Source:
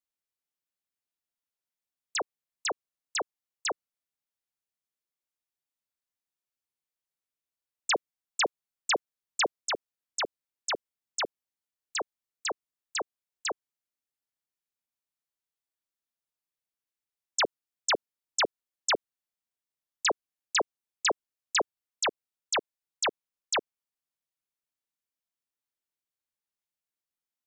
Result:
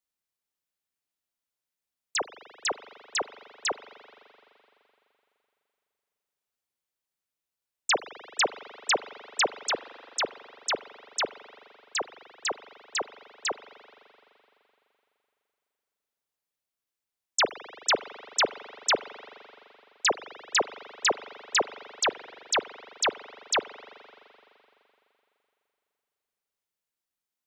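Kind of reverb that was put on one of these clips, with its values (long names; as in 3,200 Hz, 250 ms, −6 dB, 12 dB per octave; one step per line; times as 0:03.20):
spring reverb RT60 3.1 s, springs 42 ms, chirp 50 ms, DRR 14 dB
level +2.5 dB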